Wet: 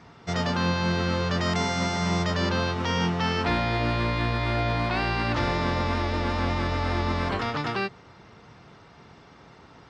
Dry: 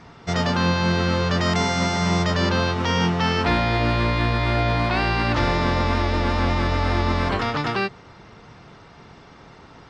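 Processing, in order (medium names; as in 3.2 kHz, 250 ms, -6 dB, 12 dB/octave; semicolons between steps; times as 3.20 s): high-pass 49 Hz; trim -4.5 dB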